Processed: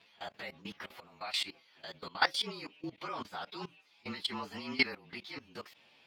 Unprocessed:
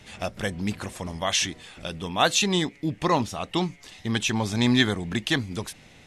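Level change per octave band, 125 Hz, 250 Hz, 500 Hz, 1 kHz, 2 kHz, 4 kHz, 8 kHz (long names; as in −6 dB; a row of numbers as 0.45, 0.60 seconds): −24.0, −18.5, −16.0, −11.0, −7.5, −10.0, −21.5 decibels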